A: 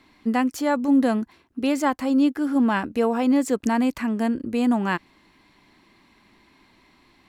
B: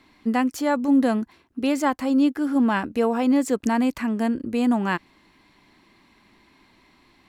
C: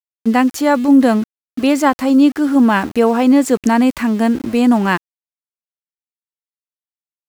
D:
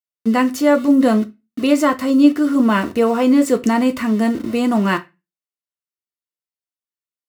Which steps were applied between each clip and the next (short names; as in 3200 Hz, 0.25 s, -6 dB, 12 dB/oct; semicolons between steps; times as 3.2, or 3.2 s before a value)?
nothing audible
sample gate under -38 dBFS; gain +8.5 dB
notch comb 810 Hz; reverb RT60 0.25 s, pre-delay 3 ms, DRR 6.5 dB; gain -1.5 dB